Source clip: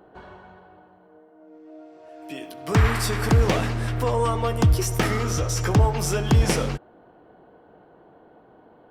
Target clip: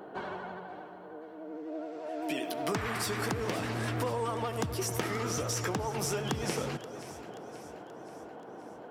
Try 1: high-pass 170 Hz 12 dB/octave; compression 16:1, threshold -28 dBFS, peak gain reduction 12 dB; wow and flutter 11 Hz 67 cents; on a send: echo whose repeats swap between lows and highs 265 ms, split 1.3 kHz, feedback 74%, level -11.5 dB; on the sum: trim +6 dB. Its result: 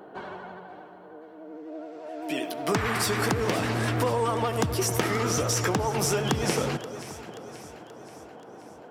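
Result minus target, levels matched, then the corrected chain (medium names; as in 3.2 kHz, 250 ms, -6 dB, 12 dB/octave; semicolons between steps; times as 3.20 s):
compression: peak gain reduction -7 dB
high-pass 170 Hz 12 dB/octave; compression 16:1, threshold -35.5 dBFS, peak gain reduction 19 dB; wow and flutter 11 Hz 67 cents; on a send: echo whose repeats swap between lows and highs 265 ms, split 1.3 kHz, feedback 74%, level -11.5 dB; on the sum: trim +6 dB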